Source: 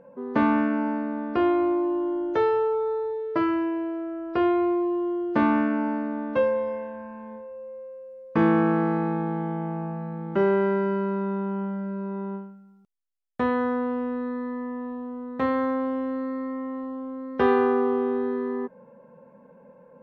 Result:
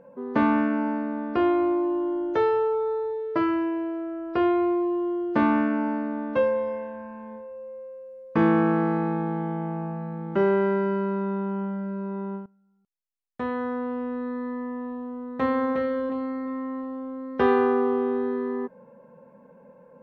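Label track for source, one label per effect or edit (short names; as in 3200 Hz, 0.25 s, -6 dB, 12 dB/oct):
12.460000	14.490000	fade in, from -18.5 dB
15.030000	15.730000	echo throw 0.36 s, feedback 30%, level -5 dB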